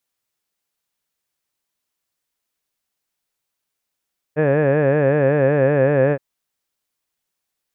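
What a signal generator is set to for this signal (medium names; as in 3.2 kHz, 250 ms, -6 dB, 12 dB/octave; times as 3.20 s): formant vowel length 1.82 s, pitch 146 Hz, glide -1 st, vibrato depth 1.15 st, F1 520 Hz, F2 1.7 kHz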